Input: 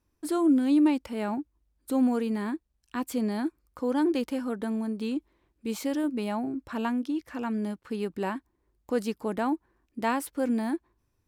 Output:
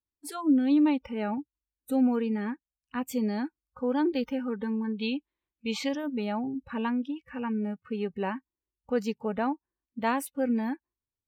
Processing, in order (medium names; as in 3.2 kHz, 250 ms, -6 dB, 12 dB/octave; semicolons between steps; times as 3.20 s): spectral noise reduction 23 dB; 4.84–5.89 s: FFT filter 520 Hz 0 dB, 3.6 kHz +11 dB, 12 kHz -13 dB